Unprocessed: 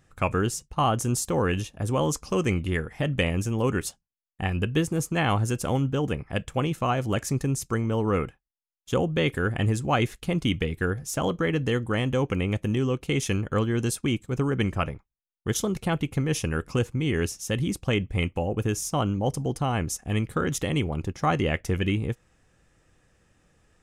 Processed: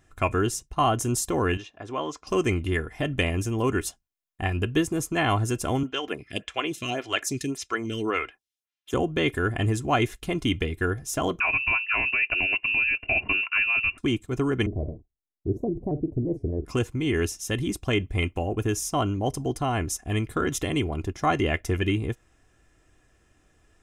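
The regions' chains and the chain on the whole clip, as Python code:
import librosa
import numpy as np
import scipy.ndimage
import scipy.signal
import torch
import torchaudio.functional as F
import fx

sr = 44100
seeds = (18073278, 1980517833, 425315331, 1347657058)

y = fx.chain(x, sr, fx.highpass(hz=650.0, slope=6),
    fx.air_absorb(metres=170.0), at=(1.57, 2.27))
y = fx.chain(y, sr, fx.weighting(curve='D'),
    fx.stagger_phaser(hz=1.8), at=(5.83, 8.94))
y = fx.chain(y, sr, fx.freq_invert(carrier_hz=2800),
    fx.peak_eq(hz=71.0, db=5.0, octaves=2.6), at=(11.4, 13.98))
y = fx.chain(y, sr, fx.cheby2_lowpass(hz=1200.0, order=4, stop_db=40),
    fx.doubler(ms=48.0, db=-12.0),
    fx.vibrato_shape(shape='square', rate_hz=4.4, depth_cents=160.0), at=(14.66, 16.65))
y = fx.notch(y, sr, hz=4500.0, q=23.0)
y = y + 0.5 * np.pad(y, (int(2.9 * sr / 1000.0), 0))[:len(y)]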